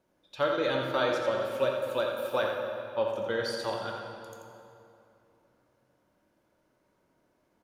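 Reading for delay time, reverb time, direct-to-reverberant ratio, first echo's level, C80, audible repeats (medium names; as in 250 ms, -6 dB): 85 ms, 2.8 s, 0.0 dB, -6.5 dB, 2.0 dB, 1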